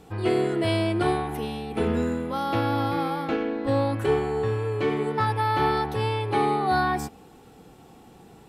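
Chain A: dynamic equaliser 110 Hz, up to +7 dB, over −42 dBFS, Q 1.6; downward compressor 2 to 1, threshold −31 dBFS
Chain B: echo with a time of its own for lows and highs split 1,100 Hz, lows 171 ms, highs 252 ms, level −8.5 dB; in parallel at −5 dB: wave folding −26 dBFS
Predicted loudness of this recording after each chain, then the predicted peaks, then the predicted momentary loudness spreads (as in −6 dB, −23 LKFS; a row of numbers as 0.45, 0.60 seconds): −30.0, −24.0 LKFS; −17.0, −10.5 dBFS; 3, 5 LU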